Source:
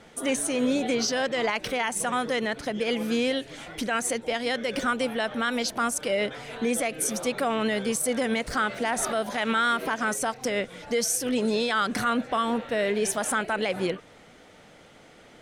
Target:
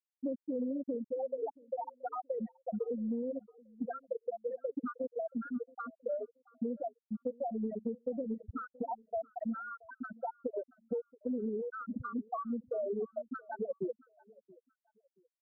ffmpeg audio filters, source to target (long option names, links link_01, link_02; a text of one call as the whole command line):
ffmpeg -i in.wav -af "equalizer=frequency=91:width=3:gain=14.5,afftfilt=real='re*gte(hypot(re,im),0.355)':imag='im*gte(hypot(re,im),0.355)':win_size=1024:overlap=0.75,acompressor=threshold=-32dB:ratio=20,asuperstop=centerf=2200:order=4:qfactor=0.68,aecho=1:1:677|1354:0.0668|0.0174" out.wav